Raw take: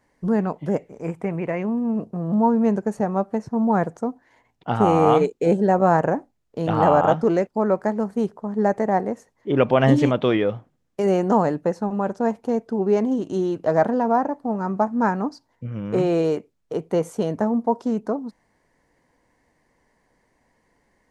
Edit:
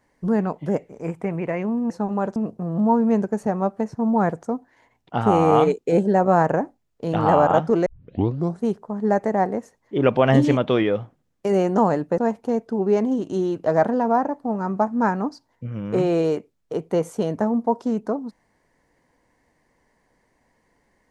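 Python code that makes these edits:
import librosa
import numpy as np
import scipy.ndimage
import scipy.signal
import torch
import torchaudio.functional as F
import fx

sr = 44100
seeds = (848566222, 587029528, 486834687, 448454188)

y = fx.edit(x, sr, fx.tape_start(start_s=7.4, length_s=0.77),
    fx.move(start_s=11.72, length_s=0.46, to_s=1.9), tone=tone)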